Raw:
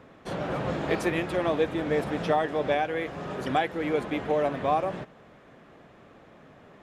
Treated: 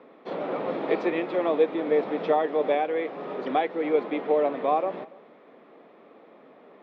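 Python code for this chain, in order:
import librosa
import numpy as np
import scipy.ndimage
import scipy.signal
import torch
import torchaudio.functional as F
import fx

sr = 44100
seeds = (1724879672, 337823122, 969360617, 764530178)

y = fx.cabinet(x, sr, low_hz=230.0, low_slope=24, high_hz=3600.0, hz=(460.0, 1600.0, 2900.0), db=(4, -8, -6))
y = y + 10.0 ** (-23.5 / 20.0) * np.pad(y, (int(284 * sr / 1000.0), 0))[:len(y)]
y = y * librosa.db_to_amplitude(1.0)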